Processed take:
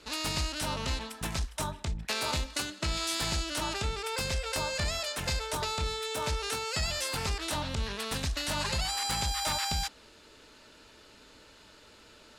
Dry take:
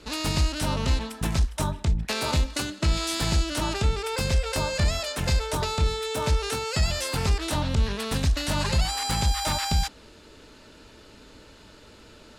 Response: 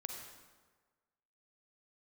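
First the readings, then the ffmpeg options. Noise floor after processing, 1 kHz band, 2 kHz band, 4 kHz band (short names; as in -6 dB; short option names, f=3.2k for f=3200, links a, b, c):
-56 dBFS, -4.0 dB, -3.0 dB, -2.5 dB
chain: -af "lowshelf=f=460:g=-8.5,volume=-2.5dB"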